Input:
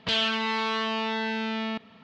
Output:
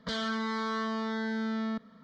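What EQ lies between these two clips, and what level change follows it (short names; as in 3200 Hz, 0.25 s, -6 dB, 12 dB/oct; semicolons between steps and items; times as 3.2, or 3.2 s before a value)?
low shelf 170 Hz +6.5 dB; fixed phaser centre 530 Hz, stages 8; -2.5 dB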